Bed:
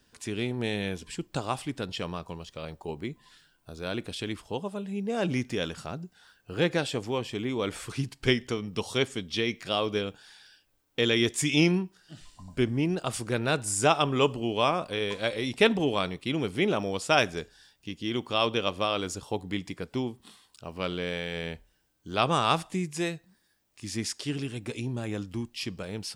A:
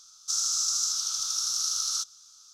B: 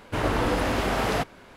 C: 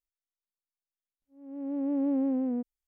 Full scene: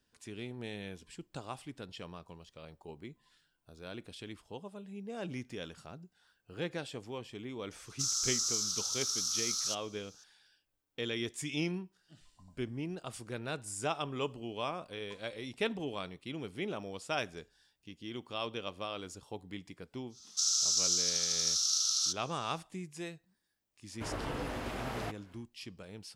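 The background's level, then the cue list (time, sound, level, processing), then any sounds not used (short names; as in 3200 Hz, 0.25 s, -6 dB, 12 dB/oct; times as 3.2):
bed -12 dB
7.71 add A -5.5 dB
20.09 add A -10.5 dB, fades 0.10 s + weighting filter D
23.88 add B -14 dB, fades 0.10 s
not used: C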